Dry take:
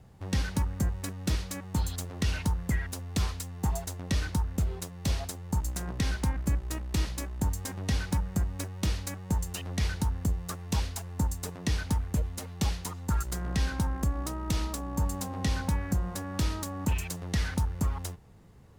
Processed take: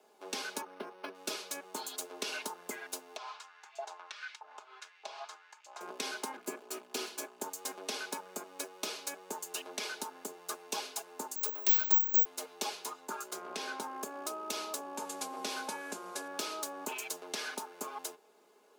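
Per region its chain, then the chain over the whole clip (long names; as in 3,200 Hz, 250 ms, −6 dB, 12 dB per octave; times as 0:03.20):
0:00.61–0:01.15: high-shelf EQ 8,800 Hz −4.5 dB + linearly interpolated sample-rate reduction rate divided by 6×
0:03.16–0:05.81: downward compressor 4 to 1, threshold −33 dBFS + auto-filter high-pass saw up 1.6 Hz 670–2,400 Hz + high-frequency loss of the air 140 metres
0:06.33–0:07.41: lower of the sound and its delayed copy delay 4.1 ms + parametric band 370 Hz +3.5 dB 0.2 octaves
0:11.36–0:12.25: bad sample-rate conversion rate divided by 2×, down none, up zero stuff + low-shelf EQ 350 Hz −12 dB
0:12.85–0:13.83: high-shelf EQ 4,600 Hz −5 dB + double-tracking delay 21 ms −12.5 dB
0:14.97–0:16.28: variable-slope delta modulation 64 kbit/s + double-tracking delay 22 ms −13 dB
whole clip: Butterworth high-pass 320 Hz 36 dB per octave; notch filter 1,900 Hz, Q 6.6; comb filter 4.8 ms, depth 59%; level −1.5 dB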